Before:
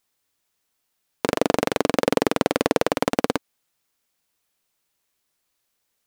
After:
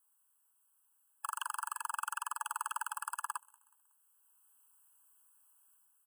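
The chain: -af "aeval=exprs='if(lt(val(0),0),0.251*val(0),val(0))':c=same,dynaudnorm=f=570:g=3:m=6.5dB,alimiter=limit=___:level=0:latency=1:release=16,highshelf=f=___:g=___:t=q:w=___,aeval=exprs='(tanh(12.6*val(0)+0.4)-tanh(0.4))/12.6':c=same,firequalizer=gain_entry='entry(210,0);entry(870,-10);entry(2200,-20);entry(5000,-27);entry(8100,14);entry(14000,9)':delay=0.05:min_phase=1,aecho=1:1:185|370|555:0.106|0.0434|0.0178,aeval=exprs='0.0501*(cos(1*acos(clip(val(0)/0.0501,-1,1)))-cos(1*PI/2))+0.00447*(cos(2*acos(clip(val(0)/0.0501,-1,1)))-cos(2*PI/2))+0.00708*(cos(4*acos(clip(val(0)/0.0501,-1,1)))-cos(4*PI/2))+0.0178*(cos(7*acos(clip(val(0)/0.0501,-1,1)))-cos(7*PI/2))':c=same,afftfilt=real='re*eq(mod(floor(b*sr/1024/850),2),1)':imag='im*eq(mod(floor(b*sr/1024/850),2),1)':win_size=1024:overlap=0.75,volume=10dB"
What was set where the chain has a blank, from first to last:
-11dB, 4400, -12.5, 1.5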